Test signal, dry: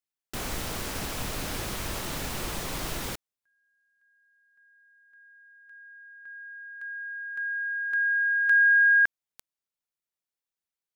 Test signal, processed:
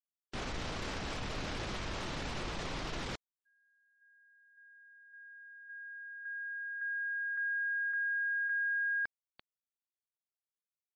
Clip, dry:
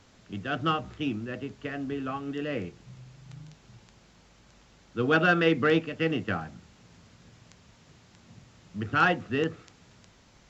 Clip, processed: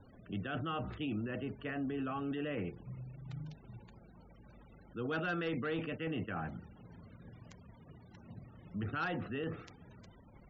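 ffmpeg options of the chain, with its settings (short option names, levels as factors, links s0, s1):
-filter_complex "[0:a]acrossover=split=5800[s0][s1];[s1]acompressor=threshold=0.00224:ratio=4:attack=1:release=60[s2];[s0][s2]amix=inputs=2:normalize=0,asoftclip=type=hard:threshold=0.158,areverse,acompressor=threshold=0.02:ratio=10:attack=0.2:release=86:knee=6:detection=peak,areverse,afftfilt=real='re*gte(hypot(re,im),0.002)':imag='im*gte(hypot(re,im),0.002)':win_size=1024:overlap=0.75,volume=1.26"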